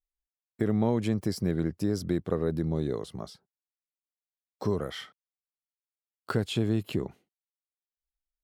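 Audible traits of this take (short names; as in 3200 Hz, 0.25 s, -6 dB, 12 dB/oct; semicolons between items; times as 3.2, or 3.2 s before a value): noise floor -97 dBFS; spectral tilt -7.0 dB/oct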